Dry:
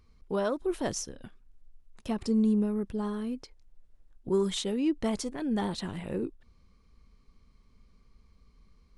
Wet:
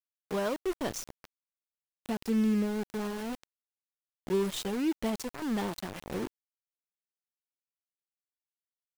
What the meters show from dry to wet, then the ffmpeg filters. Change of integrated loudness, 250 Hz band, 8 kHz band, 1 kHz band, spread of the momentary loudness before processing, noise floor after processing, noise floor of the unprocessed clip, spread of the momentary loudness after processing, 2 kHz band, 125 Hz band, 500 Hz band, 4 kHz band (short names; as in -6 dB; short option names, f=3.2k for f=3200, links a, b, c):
-2.0 dB, -2.5 dB, -2.5 dB, -0.5 dB, 12 LU, under -85 dBFS, -62 dBFS, 13 LU, +2.5 dB, -3.0 dB, -2.0 dB, -2.5 dB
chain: -af "acontrast=31,aeval=exprs='val(0)*gte(abs(val(0)),0.0422)':c=same,volume=-7dB"